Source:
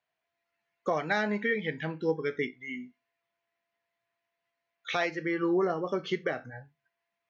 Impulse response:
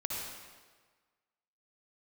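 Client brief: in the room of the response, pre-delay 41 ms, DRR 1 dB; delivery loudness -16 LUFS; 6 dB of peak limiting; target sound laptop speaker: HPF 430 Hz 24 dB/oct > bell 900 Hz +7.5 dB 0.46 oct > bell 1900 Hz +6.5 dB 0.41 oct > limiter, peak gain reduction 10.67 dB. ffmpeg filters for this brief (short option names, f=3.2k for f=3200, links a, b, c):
-filter_complex "[0:a]alimiter=limit=-23.5dB:level=0:latency=1,asplit=2[a][b];[1:a]atrim=start_sample=2205,adelay=41[c];[b][c]afir=irnorm=-1:irlink=0,volume=-4.5dB[d];[a][d]amix=inputs=2:normalize=0,highpass=f=430:w=0.5412,highpass=f=430:w=1.3066,equalizer=f=900:t=o:w=0.46:g=7.5,equalizer=f=1.9k:t=o:w=0.41:g=6.5,volume=21dB,alimiter=limit=-7.5dB:level=0:latency=1"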